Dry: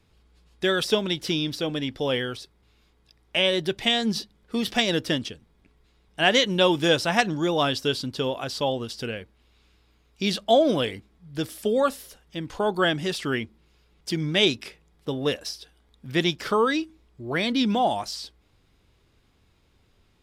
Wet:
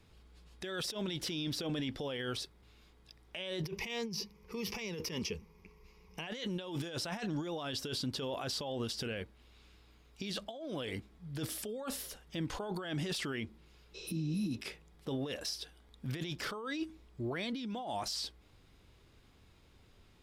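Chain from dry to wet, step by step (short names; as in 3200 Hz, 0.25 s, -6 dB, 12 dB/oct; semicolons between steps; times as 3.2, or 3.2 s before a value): 3.63–6.27 ripple EQ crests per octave 0.81, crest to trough 14 dB; 13.97–14.52 spectral repair 340–8900 Hz after; negative-ratio compressor -31 dBFS, ratio -1; limiter -23 dBFS, peak gain reduction 10 dB; gain -5.5 dB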